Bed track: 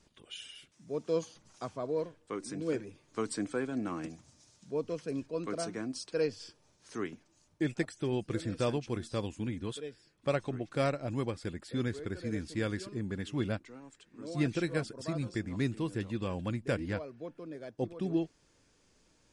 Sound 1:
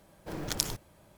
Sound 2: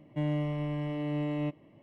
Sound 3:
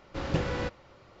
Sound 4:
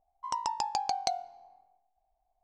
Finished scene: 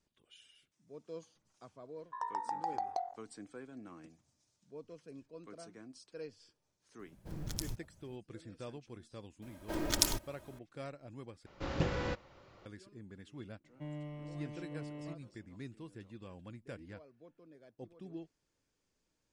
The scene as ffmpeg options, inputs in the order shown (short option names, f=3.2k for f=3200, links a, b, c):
-filter_complex "[1:a]asplit=2[a][b];[0:a]volume=-15dB[c];[4:a]afwtdn=0.0126[d];[a]bass=f=250:g=15,treble=f=4k:g=4[e];[b]aecho=1:1:3.2:0.59[f];[c]asplit=2[g][h];[g]atrim=end=11.464[i];[3:a]atrim=end=1.2,asetpts=PTS-STARTPTS,volume=-4.5dB[j];[h]atrim=start=12.656[k];[d]atrim=end=2.43,asetpts=PTS-STARTPTS,volume=-5.5dB,afade=t=in:d=0.004:c=hsin,afade=t=out:st=2.426:d=0.004:c=hsin,adelay=1890[l];[e]atrim=end=1.17,asetpts=PTS-STARTPTS,volume=-14.5dB,afade=t=in:d=0.004:c=hsin,afade=t=out:st=1.166:d=0.004:c=hsin,adelay=6990[m];[f]atrim=end=1.17,asetpts=PTS-STARTPTS,afade=t=in:d=0.004:c=hsin,afade=t=out:st=1.166:d=0.004:c=hsin,adelay=9420[n];[2:a]atrim=end=1.82,asetpts=PTS-STARTPTS,volume=-13.5dB,afade=t=in:d=0.004:c=hsin,afade=t=out:st=1.816:d=0.004:c=hsin,adelay=601524S[o];[i][j]acrossfade=d=0.004:c1=hsin:c2=hsin[p];[p][k]acrossfade=d=0.004:c1=hsin:c2=hsin[q];[q][l][m][n][o]amix=inputs=5:normalize=0"